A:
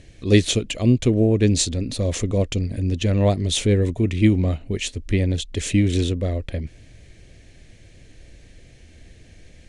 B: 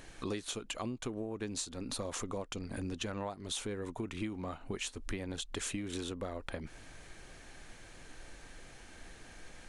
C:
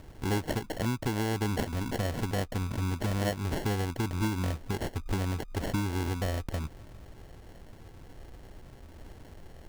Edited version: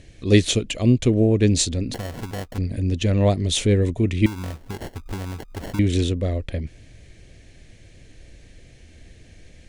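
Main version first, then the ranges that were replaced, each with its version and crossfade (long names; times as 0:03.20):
A
0:01.94–0:02.58: punch in from C
0:04.26–0:05.79: punch in from C
not used: B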